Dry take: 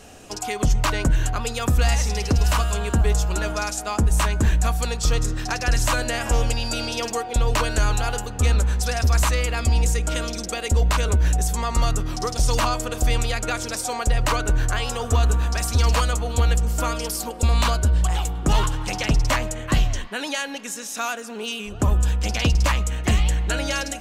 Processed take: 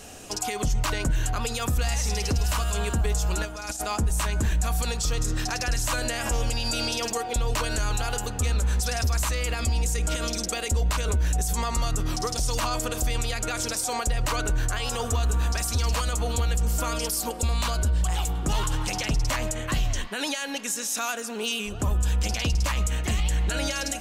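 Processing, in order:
high-shelf EQ 4,300 Hz +6.5 dB
brickwall limiter −17.5 dBFS, peak gain reduction 9 dB
0:03.45–0:03.85: compressor whose output falls as the input rises −32 dBFS, ratio −0.5

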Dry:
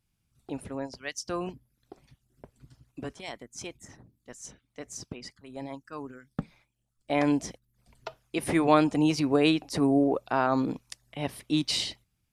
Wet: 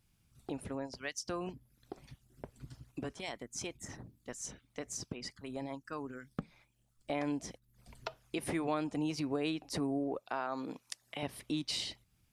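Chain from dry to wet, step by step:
0:10.19–0:11.23: high-pass filter 470 Hz 6 dB per octave
downward compressor 2.5 to 1, threshold −45 dBFS, peak gain reduction 19 dB
level +4.5 dB

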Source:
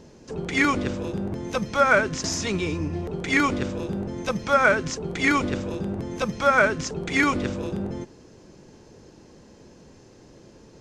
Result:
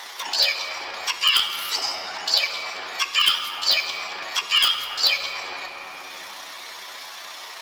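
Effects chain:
high-pass filter 860 Hz 12 dB per octave
high shelf with overshoot 3,400 Hz −11 dB, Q 1.5
change of speed 2.13×
random phases in short frames
in parallel at −4.5 dB: wrap-around overflow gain 9.5 dB
on the sum: time stretch by overlap-add 1.5×, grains 65 ms
on a send at −5.5 dB: convolution reverb RT60 2.6 s, pre-delay 3 ms
on the sum: multiband upward and downward compressor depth 70%

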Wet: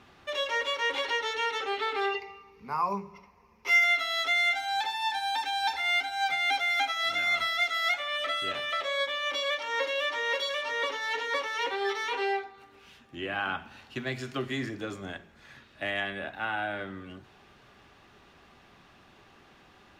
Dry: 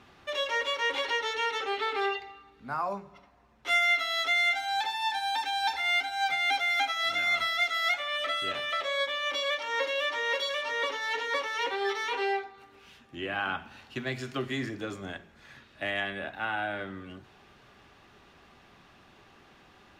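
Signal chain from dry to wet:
0:02.14–0:03.84: EQ curve with evenly spaced ripples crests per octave 0.82, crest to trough 13 dB

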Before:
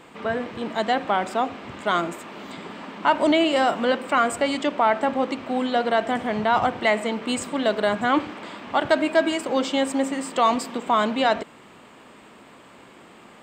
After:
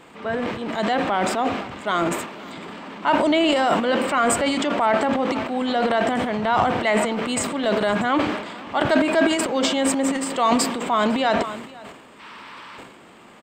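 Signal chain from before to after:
gain on a spectral selection 0:12.20–0:12.78, 820–6,100 Hz +11 dB
single-tap delay 505 ms −22 dB
transient designer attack −2 dB, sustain +11 dB

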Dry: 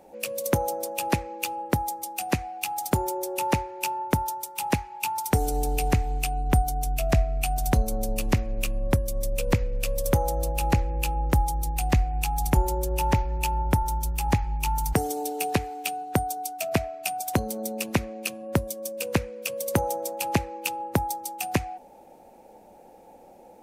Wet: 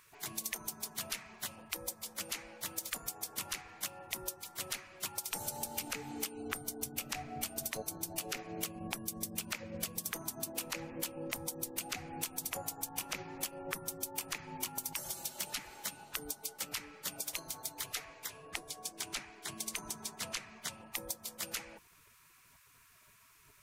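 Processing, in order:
gate on every frequency bin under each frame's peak −20 dB weak
0:18.28–0:20.93: parametric band 14,000 Hz −13 dB 0.42 octaves
downward compressor 4 to 1, threshold −40 dBFS, peak gain reduction 10.5 dB
level +4 dB

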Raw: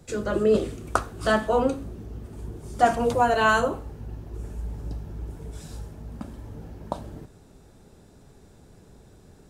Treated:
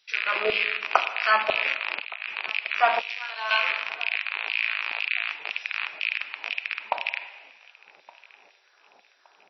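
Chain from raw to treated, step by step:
loose part that buzzes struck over −35 dBFS, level −15 dBFS
high-pass filter 64 Hz 6 dB per octave
auto-filter high-pass saw down 2 Hz 660–3,000 Hz
four-comb reverb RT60 1.3 s, combs from 33 ms, DRR 10 dB
0:01.86–0:02.36: compressor whose output falls as the input rises −33 dBFS, ratio −0.5
0:02.99–0:03.51: first-order pre-emphasis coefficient 0.9
repeating echo 1,168 ms, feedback 36%, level −23 dB
MP3 24 kbit/s 22,050 Hz

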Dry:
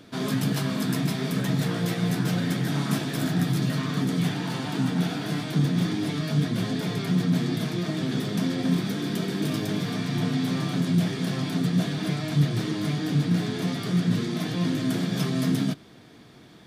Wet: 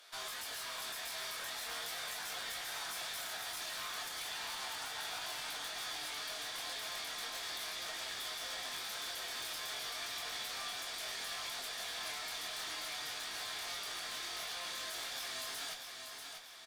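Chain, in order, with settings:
high-pass filter 710 Hz 24 dB per octave
high-shelf EQ 4,000 Hz +8.5 dB
brickwall limiter −26.5 dBFS, peak gain reduction 12.5 dB
asymmetric clip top −38 dBFS
chorus effect 0.37 Hz, delay 20 ms, depth 4.9 ms
repeating echo 640 ms, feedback 44%, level −6 dB
level −2 dB

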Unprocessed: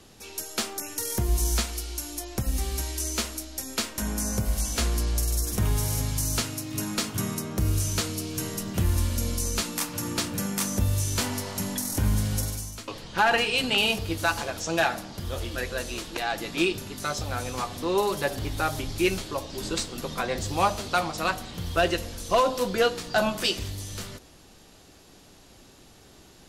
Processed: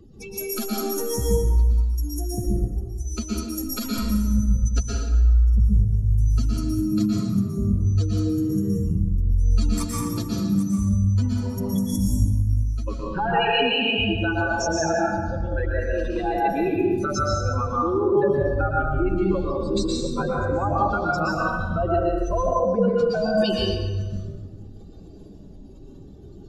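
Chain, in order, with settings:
expanding power law on the bin magnitudes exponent 3
notch filter 730 Hz, Q 13
in parallel at −2.5 dB: downward compressor, threshold −35 dBFS, peak gain reduction 15.5 dB
on the sum: brickwall limiter −19 dBFS, peak gain reduction 7 dB
dense smooth reverb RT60 1.4 s, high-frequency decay 0.65×, pre-delay 105 ms, DRR −4.5 dB

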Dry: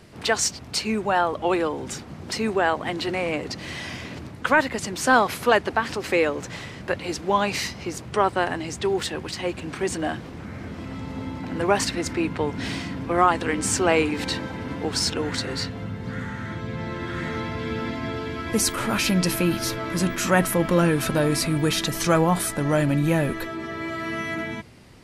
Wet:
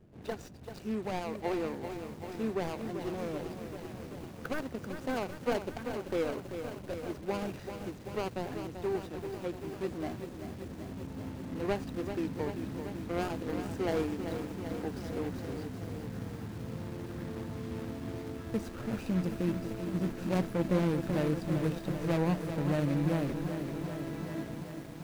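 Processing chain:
running median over 41 samples
feedback echo at a low word length 388 ms, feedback 80%, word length 7 bits, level −8 dB
level −8.5 dB

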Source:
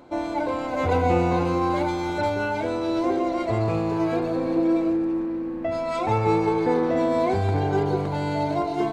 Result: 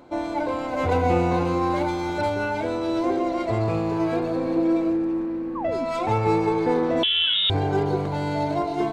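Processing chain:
stylus tracing distortion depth 0.028 ms
0:05.55–0:05.85: sound drawn into the spectrogram fall 230–1,200 Hz −31 dBFS
0:07.03–0:07.50: voice inversion scrambler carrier 3,700 Hz

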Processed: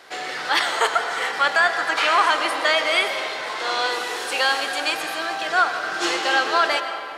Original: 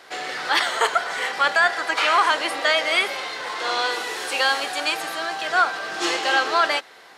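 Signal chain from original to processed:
comb and all-pass reverb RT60 2.9 s, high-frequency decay 0.55×, pre-delay 70 ms, DRR 8 dB

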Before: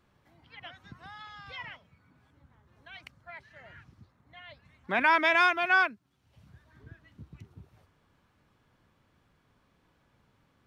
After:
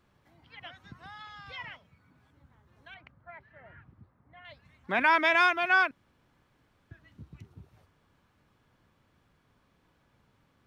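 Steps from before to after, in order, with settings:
0:02.94–0:04.45: low-pass filter 1,700 Hz 12 dB per octave
0:05.91–0:06.91: fill with room tone

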